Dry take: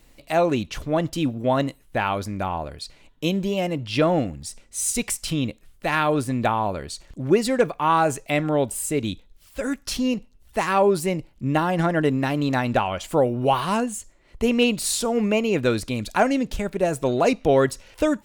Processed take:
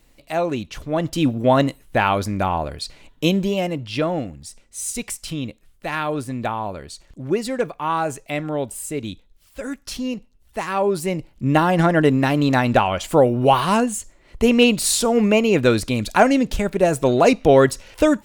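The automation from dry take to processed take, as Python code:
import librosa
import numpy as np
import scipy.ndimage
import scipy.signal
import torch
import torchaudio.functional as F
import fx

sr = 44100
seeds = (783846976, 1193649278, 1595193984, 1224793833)

y = fx.gain(x, sr, db=fx.line((0.82, -2.0), (1.28, 5.5), (3.25, 5.5), (4.12, -3.0), (10.71, -3.0), (11.53, 5.0)))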